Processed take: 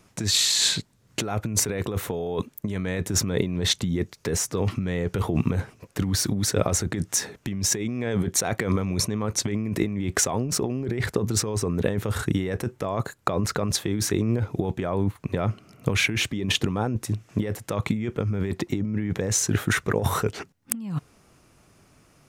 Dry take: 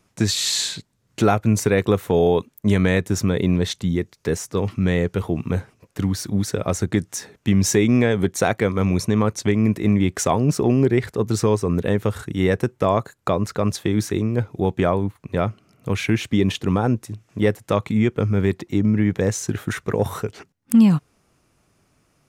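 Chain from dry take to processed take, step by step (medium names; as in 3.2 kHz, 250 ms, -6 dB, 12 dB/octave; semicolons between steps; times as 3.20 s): compressor with a negative ratio -25 dBFS, ratio -1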